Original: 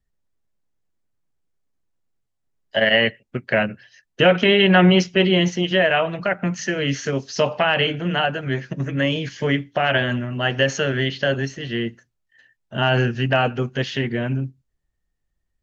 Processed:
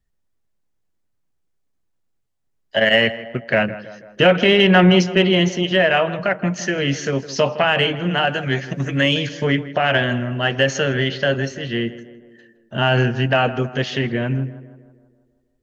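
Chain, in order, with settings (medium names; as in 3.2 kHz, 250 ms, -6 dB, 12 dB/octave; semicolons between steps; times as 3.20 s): 8.27–9.27 s: treble shelf 2.4 kHz +9 dB; tape echo 162 ms, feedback 61%, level -14 dB, low-pass 1.7 kHz; in parallel at -11.5 dB: saturation -12 dBFS, distortion -14 dB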